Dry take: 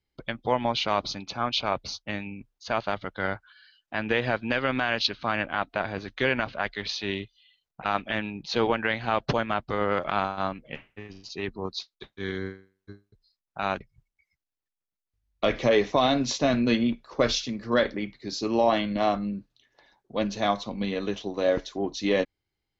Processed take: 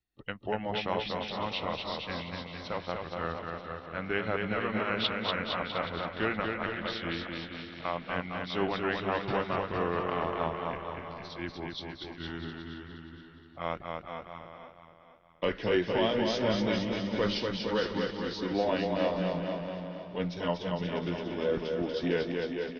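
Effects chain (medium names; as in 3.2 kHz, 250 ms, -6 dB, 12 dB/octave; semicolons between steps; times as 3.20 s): rotating-head pitch shifter -2.5 st; bouncing-ball echo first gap 240 ms, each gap 0.9×, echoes 5; vibrato 3.5 Hz 28 cents; feedback delay 471 ms, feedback 38%, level -10.5 dB; trim -5.5 dB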